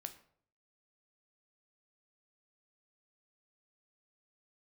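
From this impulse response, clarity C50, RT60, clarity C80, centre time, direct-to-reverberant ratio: 13.0 dB, 0.60 s, 16.5 dB, 8 ms, 7.5 dB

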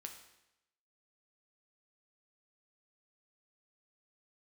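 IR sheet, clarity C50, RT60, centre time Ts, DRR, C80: 8.0 dB, 0.90 s, 21 ms, 3.5 dB, 10.0 dB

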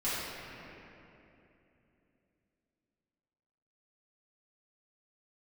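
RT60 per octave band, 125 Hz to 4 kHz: 3.7 s, 3.9 s, 3.3 s, 2.7 s, 2.7 s, 1.9 s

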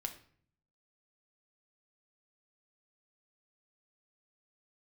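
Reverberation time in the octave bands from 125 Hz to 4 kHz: 0.95 s, 0.80 s, 0.55 s, 0.50 s, 0.50 s, 0.40 s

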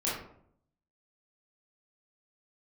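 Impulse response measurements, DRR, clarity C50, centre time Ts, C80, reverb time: -8.0 dB, 1.5 dB, 52 ms, 6.5 dB, 0.65 s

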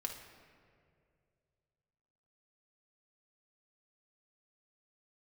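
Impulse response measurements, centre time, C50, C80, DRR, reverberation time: 40 ms, 5.5 dB, 8.0 dB, 2.5 dB, 2.3 s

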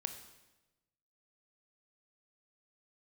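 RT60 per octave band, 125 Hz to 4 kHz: 1.4 s, 1.2 s, 1.1 s, 1.0 s, 0.95 s, 0.95 s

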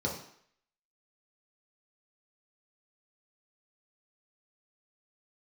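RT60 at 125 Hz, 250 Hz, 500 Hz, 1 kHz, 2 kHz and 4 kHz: 0.50 s, 0.55 s, 0.60 s, 0.65 s, 0.70 s, 0.65 s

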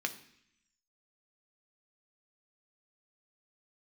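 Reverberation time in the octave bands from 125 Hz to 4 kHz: 0.90 s, 0.95 s, 0.65 s, 0.70 s, 0.95 s, 0.90 s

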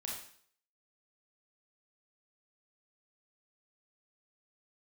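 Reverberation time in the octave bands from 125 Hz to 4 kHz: 0.50 s, 0.55 s, 0.55 s, 0.55 s, 0.55 s, 0.55 s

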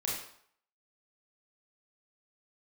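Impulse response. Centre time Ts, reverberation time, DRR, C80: 52 ms, 0.65 s, -4.5 dB, 6.0 dB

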